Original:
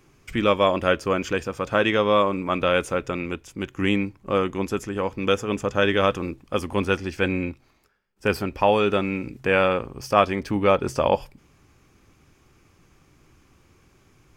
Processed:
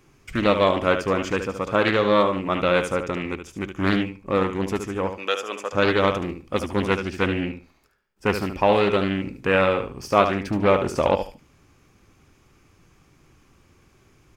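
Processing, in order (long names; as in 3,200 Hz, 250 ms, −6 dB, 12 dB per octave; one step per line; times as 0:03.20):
0:05.11–0:05.73: high-pass filter 590 Hz 12 dB per octave
repeating echo 73 ms, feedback 21%, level −8.5 dB
highs frequency-modulated by the lows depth 0.36 ms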